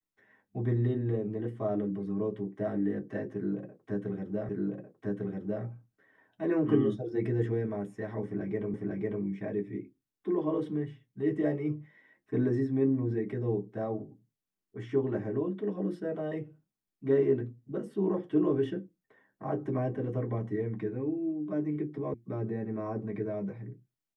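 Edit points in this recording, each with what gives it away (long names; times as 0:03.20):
0:04.49: the same again, the last 1.15 s
0:08.74: the same again, the last 0.5 s
0:22.14: cut off before it has died away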